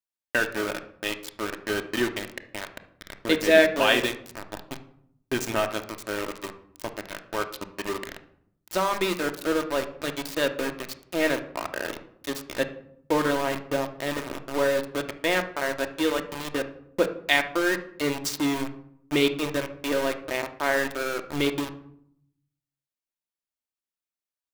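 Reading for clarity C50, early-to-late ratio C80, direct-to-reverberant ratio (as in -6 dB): 12.0 dB, 16.0 dB, 6.5 dB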